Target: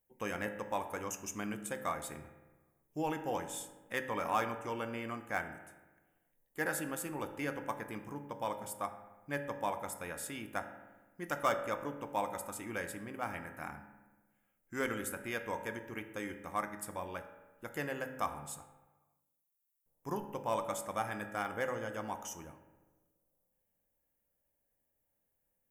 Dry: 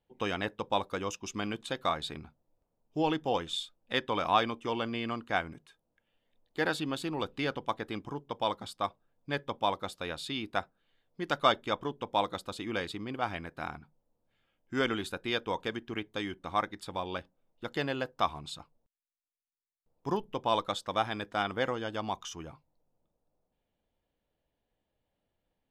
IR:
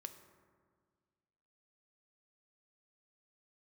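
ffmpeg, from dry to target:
-filter_complex "[0:a]equalizer=f=2k:t=o:w=1:g=6,equalizer=f=4k:t=o:w=1:g=-11,equalizer=f=8k:t=o:w=1:g=-5[a];[1:a]atrim=start_sample=2205,asetrate=66150,aresample=44100[b];[a][b]afir=irnorm=-1:irlink=0,asplit=2[c][d];[d]asoftclip=type=hard:threshold=-29dB,volume=-11dB[e];[c][e]amix=inputs=2:normalize=0,aexciter=amount=12:drive=2.3:freq=5.8k"

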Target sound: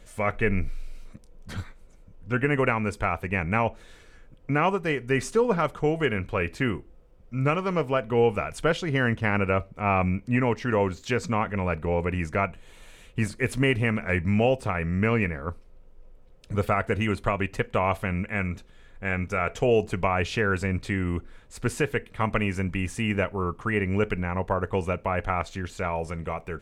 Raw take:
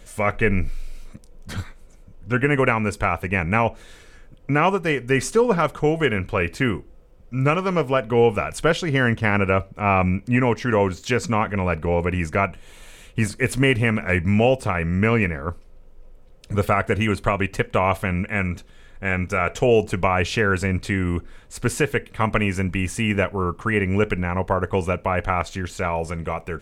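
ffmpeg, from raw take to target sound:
-af "highshelf=f=5.1k:g=-4.5,volume=-4.5dB"

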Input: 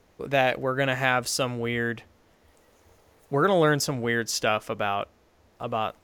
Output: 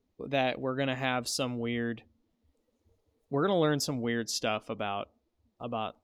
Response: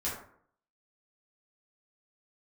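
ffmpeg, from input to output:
-af "equalizer=f=250:t=o:w=0.67:g=6,equalizer=f=1.6k:t=o:w=0.67:g=-5,equalizer=f=4k:t=o:w=0.67:g=5,afftdn=nr=16:nf=-47,volume=-6.5dB"

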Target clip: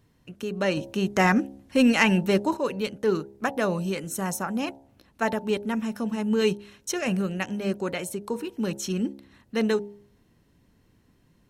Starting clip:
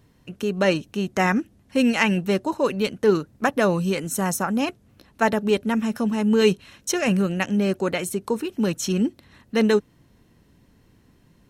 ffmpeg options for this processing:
-filter_complex "[0:a]bandreject=f=68.11:t=h:w=4,bandreject=f=136.22:t=h:w=4,bandreject=f=204.33:t=h:w=4,bandreject=f=272.44:t=h:w=4,bandreject=f=340.55:t=h:w=4,bandreject=f=408.66:t=h:w=4,bandreject=f=476.77:t=h:w=4,bandreject=f=544.88:t=h:w=4,bandreject=f=612.99:t=h:w=4,bandreject=f=681.1:t=h:w=4,bandreject=f=749.21:t=h:w=4,bandreject=f=817.32:t=h:w=4,bandreject=f=885.43:t=h:w=4,bandreject=f=953.54:t=h:w=4,asettb=1/sr,asplit=3[a][b][c];[a]atrim=end=0.774[d];[b]atrim=start=0.77:end=2.57,asetpts=PTS-STARTPTS,afade=t=in:d=0.004:c=qsin,afade=t=out:st=1.796:d=0.004:c=qsin,acontrast=52[e];[c]atrim=start=2.566[f];[d][e]acrossfade=d=0.004:c1=hsin:c2=qsin[g];[g][f]acrossfade=d=0.004:c1=qsin:c2=hsin,volume=-5dB"

